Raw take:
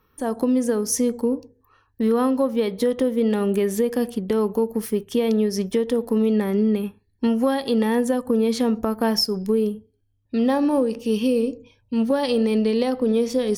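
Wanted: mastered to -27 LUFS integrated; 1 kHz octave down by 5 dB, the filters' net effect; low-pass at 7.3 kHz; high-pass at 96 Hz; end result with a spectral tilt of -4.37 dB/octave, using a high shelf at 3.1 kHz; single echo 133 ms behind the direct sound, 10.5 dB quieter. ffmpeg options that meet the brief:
-af "highpass=96,lowpass=7300,equalizer=f=1000:t=o:g=-7.5,highshelf=f=3100:g=8.5,aecho=1:1:133:0.299,volume=0.562"

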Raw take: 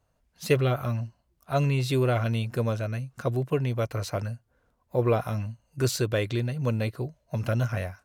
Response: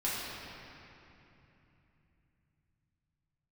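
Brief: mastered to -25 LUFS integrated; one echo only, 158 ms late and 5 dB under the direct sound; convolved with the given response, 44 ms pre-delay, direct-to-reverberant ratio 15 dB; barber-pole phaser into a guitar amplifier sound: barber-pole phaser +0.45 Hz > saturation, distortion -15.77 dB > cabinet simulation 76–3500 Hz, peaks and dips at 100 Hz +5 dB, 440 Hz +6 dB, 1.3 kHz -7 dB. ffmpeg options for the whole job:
-filter_complex "[0:a]aecho=1:1:158:0.562,asplit=2[s0][s1];[1:a]atrim=start_sample=2205,adelay=44[s2];[s1][s2]afir=irnorm=-1:irlink=0,volume=0.075[s3];[s0][s3]amix=inputs=2:normalize=0,asplit=2[s4][s5];[s5]afreqshift=0.45[s6];[s4][s6]amix=inputs=2:normalize=1,asoftclip=threshold=0.0891,highpass=76,equalizer=f=100:t=q:w=4:g=5,equalizer=f=440:t=q:w=4:g=6,equalizer=f=1300:t=q:w=4:g=-7,lowpass=f=3500:w=0.5412,lowpass=f=3500:w=1.3066,volume=1.78"

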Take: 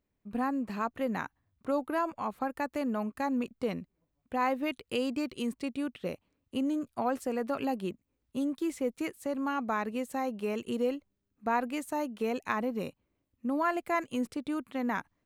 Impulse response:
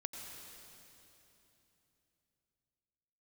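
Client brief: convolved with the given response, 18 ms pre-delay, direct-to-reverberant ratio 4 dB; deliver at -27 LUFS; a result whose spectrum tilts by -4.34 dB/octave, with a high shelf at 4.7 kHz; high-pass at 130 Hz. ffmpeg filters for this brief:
-filter_complex "[0:a]highpass=130,highshelf=f=4700:g=-8,asplit=2[s0][s1];[1:a]atrim=start_sample=2205,adelay=18[s2];[s1][s2]afir=irnorm=-1:irlink=0,volume=0.75[s3];[s0][s3]amix=inputs=2:normalize=0,volume=1.88"

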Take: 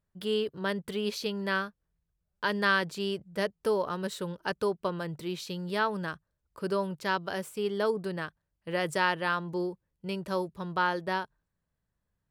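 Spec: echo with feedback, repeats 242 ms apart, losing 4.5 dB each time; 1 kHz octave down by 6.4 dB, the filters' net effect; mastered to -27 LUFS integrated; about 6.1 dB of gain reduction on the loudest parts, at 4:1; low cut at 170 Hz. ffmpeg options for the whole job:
-af "highpass=170,equalizer=f=1000:t=o:g=-8,acompressor=threshold=0.0251:ratio=4,aecho=1:1:242|484|726|968|1210|1452|1694|1936|2178:0.596|0.357|0.214|0.129|0.0772|0.0463|0.0278|0.0167|0.01,volume=2.82"

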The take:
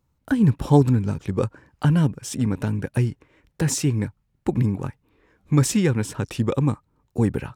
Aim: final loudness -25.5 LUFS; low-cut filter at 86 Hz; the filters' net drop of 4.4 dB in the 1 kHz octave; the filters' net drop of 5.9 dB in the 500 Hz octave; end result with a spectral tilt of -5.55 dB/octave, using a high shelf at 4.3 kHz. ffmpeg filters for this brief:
-af "highpass=86,equalizer=f=500:t=o:g=-7,equalizer=f=1000:t=o:g=-3.5,highshelf=f=4300:g=5,volume=0.841"

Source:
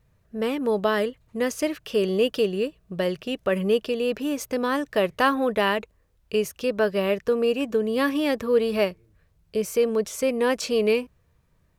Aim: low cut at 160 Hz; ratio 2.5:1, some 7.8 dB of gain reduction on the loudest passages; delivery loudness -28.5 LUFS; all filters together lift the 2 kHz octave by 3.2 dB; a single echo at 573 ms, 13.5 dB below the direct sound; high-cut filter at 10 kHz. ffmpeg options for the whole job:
-af "highpass=160,lowpass=10000,equalizer=f=2000:t=o:g=4,acompressor=threshold=0.0398:ratio=2.5,aecho=1:1:573:0.211,volume=1.26"

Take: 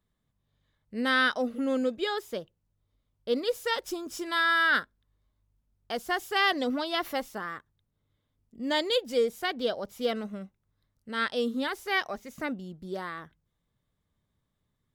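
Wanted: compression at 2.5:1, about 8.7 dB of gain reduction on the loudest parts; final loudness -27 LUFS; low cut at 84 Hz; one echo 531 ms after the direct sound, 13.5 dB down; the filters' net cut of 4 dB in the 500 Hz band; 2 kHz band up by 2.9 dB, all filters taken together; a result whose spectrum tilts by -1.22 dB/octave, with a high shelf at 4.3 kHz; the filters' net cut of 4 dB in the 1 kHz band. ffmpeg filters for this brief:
-af "highpass=84,equalizer=f=500:t=o:g=-3,equalizer=f=1000:t=o:g=-8,equalizer=f=2000:t=o:g=8,highshelf=f=4300:g=-6.5,acompressor=threshold=0.0224:ratio=2.5,aecho=1:1:531:0.211,volume=2.66"

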